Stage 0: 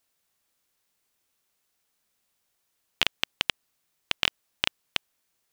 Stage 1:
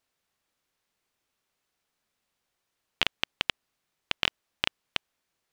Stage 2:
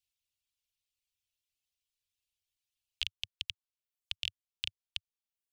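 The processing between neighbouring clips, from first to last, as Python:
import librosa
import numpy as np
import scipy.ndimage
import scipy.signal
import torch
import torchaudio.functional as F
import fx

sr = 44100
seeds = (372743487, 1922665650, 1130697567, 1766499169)

y1 = fx.high_shelf(x, sr, hz=6500.0, db=-11.5)
y2 = fx.dereverb_blind(y1, sr, rt60_s=0.81)
y2 = scipy.signal.sosfilt(scipy.signal.cheby1(3, 1.0, [100.0, 2700.0], 'bandstop', fs=sr, output='sos'), y2)
y2 = fx.dynamic_eq(y2, sr, hz=1900.0, q=0.93, threshold_db=-45.0, ratio=4.0, max_db=-6)
y2 = y2 * 10.0 ** (-4.5 / 20.0)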